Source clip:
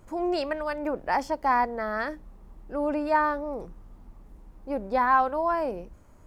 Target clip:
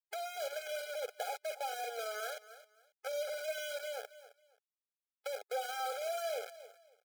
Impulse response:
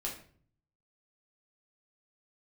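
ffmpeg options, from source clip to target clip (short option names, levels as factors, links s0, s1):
-filter_complex "[0:a]highpass=110,lowpass=4400,asplit=2[s0][s1];[s1]adelay=43,volume=0.316[s2];[s0][s2]amix=inputs=2:normalize=0,acrusher=bits=4:mix=0:aa=0.000001,aecho=1:1:243|486:0.075|0.0165,asoftclip=type=hard:threshold=0.0596,acompressor=threshold=0.0251:ratio=12,atempo=0.89,afftfilt=real='re*eq(mod(floor(b*sr/1024/420),2),1)':imag='im*eq(mod(floor(b*sr/1024/420),2),1)':win_size=1024:overlap=0.75,volume=0.891"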